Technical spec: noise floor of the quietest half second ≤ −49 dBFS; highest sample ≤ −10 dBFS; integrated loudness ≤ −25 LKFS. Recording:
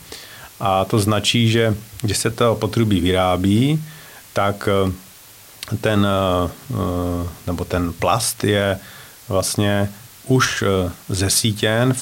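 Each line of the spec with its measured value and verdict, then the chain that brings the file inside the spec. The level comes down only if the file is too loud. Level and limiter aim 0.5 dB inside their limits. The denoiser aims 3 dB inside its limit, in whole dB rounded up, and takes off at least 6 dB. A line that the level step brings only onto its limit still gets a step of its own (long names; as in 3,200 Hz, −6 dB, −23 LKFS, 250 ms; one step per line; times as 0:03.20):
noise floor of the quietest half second −43 dBFS: out of spec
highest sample −5.0 dBFS: out of spec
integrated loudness −19.0 LKFS: out of spec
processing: level −6.5 dB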